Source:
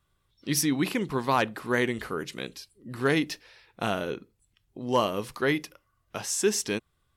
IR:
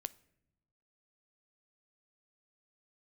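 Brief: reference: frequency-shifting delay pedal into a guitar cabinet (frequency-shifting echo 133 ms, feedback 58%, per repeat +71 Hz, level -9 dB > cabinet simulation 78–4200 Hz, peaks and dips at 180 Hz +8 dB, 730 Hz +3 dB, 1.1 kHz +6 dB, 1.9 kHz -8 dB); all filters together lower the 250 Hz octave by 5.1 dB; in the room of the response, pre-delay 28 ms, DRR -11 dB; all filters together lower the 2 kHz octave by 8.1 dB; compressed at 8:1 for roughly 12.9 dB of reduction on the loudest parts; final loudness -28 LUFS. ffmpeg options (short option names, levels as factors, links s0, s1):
-filter_complex "[0:a]equalizer=f=250:t=o:g=-9,equalizer=f=2000:t=o:g=-7,acompressor=threshold=0.0178:ratio=8,asplit=2[s0][s1];[1:a]atrim=start_sample=2205,adelay=28[s2];[s1][s2]afir=irnorm=-1:irlink=0,volume=4.73[s3];[s0][s3]amix=inputs=2:normalize=0,asplit=8[s4][s5][s6][s7][s8][s9][s10][s11];[s5]adelay=133,afreqshift=71,volume=0.355[s12];[s6]adelay=266,afreqshift=142,volume=0.207[s13];[s7]adelay=399,afreqshift=213,volume=0.119[s14];[s8]adelay=532,afreqshift=284,volume=0.0692[s15];[s9]adelay=665,afreqshift=355,volume=0.0403[s16];[s10]adelay=798,afreqshift=426,volume=0.0232[s17];[s11]adelay=931,afreqshift=497,volume=0.0135[s18];[s4][s12][s13][s14][s15][s16][s17][s18]amix=inputs=8:normalize=0,highpass=78,equalizer=f=180:t=q:w=4:g=8,equalizer=f=730:t=q:w=4:g=3,equalizer=f=1100:t=q:w=4:g=6,equalizer=f=1900:t=q:w=4:g=-8,lowpass=f=4200:w=0.5412,lowpass=f=4200:w=1.3066,volume=1.06"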